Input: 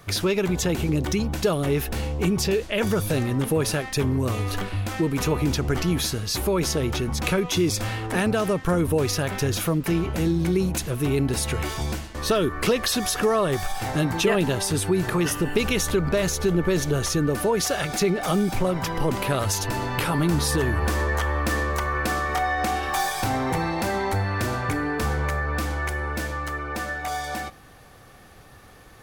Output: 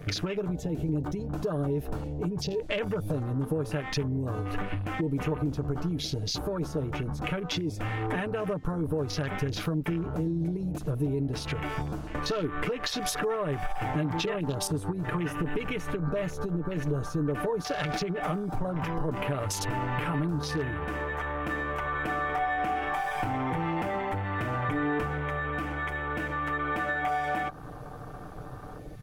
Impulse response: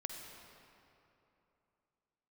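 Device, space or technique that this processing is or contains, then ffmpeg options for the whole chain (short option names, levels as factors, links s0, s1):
serial compression, leveller first: -af "acompressor=threshold=0.0501:ratio=2,acompressor=threshold=0.0141:ratio=6,aecho=1:1:6.7:0.54,afwtdn=0.00562,volume=2.51"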